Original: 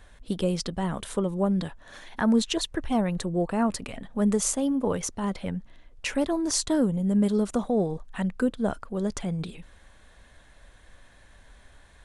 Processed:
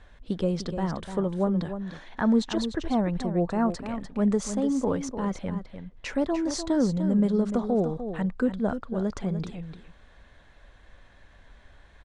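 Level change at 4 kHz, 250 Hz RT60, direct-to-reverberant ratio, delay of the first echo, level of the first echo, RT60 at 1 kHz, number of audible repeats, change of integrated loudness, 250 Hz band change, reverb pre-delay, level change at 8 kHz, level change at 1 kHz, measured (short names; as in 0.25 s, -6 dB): -5.5 dB, none, none, 0.298 s, -9.5 dB, none, 1, -0.5 dB, +0.5 dB, none, -9.0 dB, 0.0 dB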